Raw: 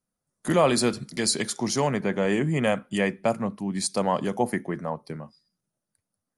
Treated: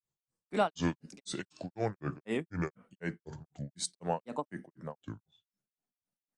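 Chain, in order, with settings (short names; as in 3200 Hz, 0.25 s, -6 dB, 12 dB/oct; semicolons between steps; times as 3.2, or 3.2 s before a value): grains 0.208 s, grains 4/s, spray 25 ms, pitch spread up and down by 7 st; downsampling 22050 Hz; gain -6.5 dB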